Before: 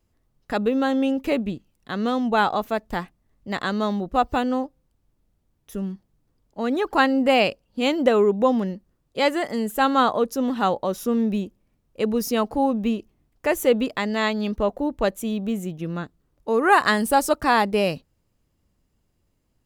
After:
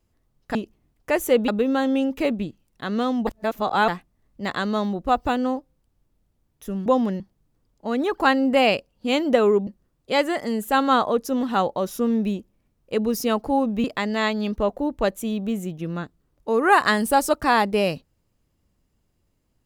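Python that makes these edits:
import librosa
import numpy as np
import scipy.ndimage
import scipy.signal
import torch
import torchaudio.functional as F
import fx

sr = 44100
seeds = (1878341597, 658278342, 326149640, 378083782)

y = fx.edit(x, sr, fx.reverse_span(start_s=2.34, length_s=0.61),
    fx.move(start_s=8.4, length_s=0.34, to_s=5.93),
    fx.move(start_s=12.91, length_s=0.93, to_s=0.55), tone=tone)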